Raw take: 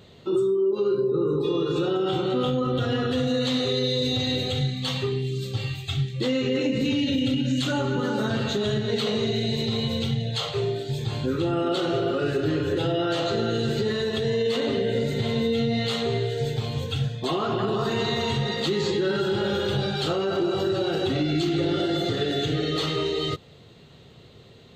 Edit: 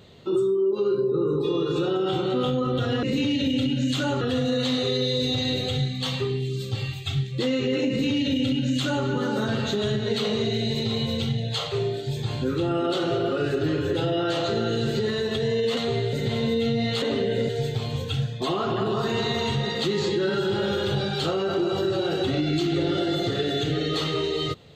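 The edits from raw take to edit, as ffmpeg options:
-filter_complex "[0:a]asplit=7[a][b][c][d][e][f][g];[a]atrim=end=3.032[h];[b]atrim=start=6.708:end=7.892[i];[c]atrim=start=3.028:end=14.592[j];[d]atrim=start=15.948:end=16.312[k];[e]atrim=start=15.058:end=15.952[l];[f]atrim=start=14.588:end=15.062[m];[g]atrim=start=16.308[n];[h][i]acrossfade=d=0.004:c1=hsin:c2=hsin[o];[o][j]acrossfade=d=0.004:c1=hsin:c2=hsin[p];[p][k]acrossfade=d=0.004:c1=hsin:c2=hsin[q];[q][l]acrossfade=d=0.004:c1=hsin:c2=hsin[r];[r][m]acrossfade=d=0.004:c1=hsin:c2=hsin[s];[s][n]acrossfade=d=0.004:c1=hsin:c2=hsin"

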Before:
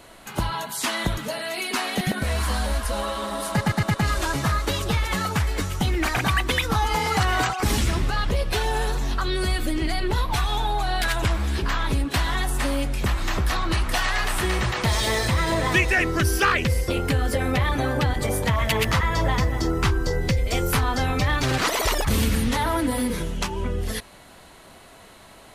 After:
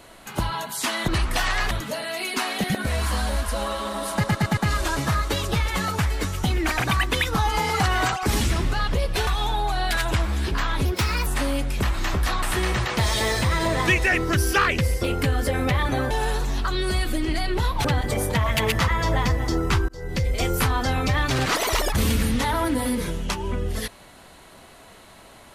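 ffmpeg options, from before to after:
-filter_complex "[0:a]asplit=10[a][b][c][d][e][f][g][h][i][j];[a]atrim=end=1.082[k];[b]atrim=start=13.658:end=14.292[l];[c]atrim=start=1.078:end=8.642[m];[d]atrim=start=10.378:end=11.964[n];[e]atrim=start=11.96:end=12.5,asetpts=PTS-STARTPTS,asetrate=57330,aresample=44100,atrim=end_sample=18318,asetpts=PTS-STARTPTS[o];[f]atrim=start=12.496:end=13.662[p];[g]atrim=start=14.288:end=17.972[q];[h]atrim=start=8.638:end=10.382[r];[i]atrim=start=17.968:end=20.01,asetpts=PTS-STARTPTS,afade=t=out:st=2.038:d=0.004:c=hsin[s];[j]atrim=start=20.01,asetpts=PTS-STARTPTS,afade=t=in:d=0.4[t];[k][l]acrossfade=d=0.004:c1=hsin:c2=hsin[u];[u][m]acrossfade=d=0.004:c1=hsin:c2=hsin[v];[v][n]acrossfade=d=0.004:c1=hsin:c2=hsin[w];[w][o]acrossfade=d=0.004:c1=hsin:c2=hsin[x];[x][p]acrossfade=d=0.004:c1=hsin:c2=hsin[y];[y][q]acrossfade=d=0.004:c1=hsin:c2=hsin[z];[z][r]acrossfade=d=0.004:c1=hsin:c2=hsin[aa];[s][t]concat=n=2:v=0:a=1[ab];[aa][ab]acrossfade=d=0.004:c1=hsin:c2=hsin"

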